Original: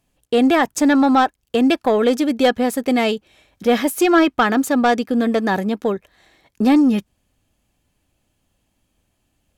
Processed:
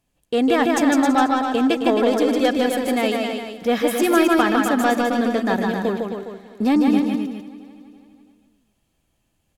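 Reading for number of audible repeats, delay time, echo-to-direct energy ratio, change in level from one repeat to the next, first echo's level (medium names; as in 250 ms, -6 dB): 11, 154 ms, -0.5 dB, no regular repeats, -4.0 dB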